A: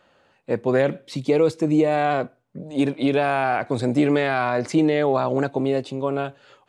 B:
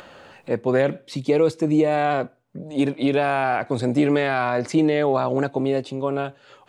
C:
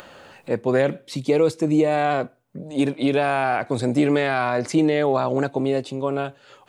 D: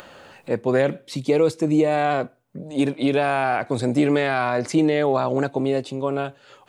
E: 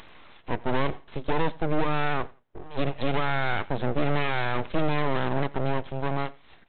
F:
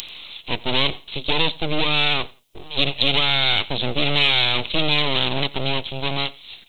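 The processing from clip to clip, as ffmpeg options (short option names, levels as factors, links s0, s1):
-af "acompressor=mode=upward:threshold=0.0251:ratio=2.5"
-af "highshelf=f=8100:g=8"
-af anull
-af "aeval=exprs='(tanh(7.08*val(0)+0.55)-tanh(0.55))/7.08':c=same,aresample=8000,aeval=exprs='abs(val(0))':c=same,aresample=44100,aecho=1:1:86|172:0.0708|0.0163"
-af "aexciter=amount=11.2:drive=6.7:freq=2600,volume=1.19"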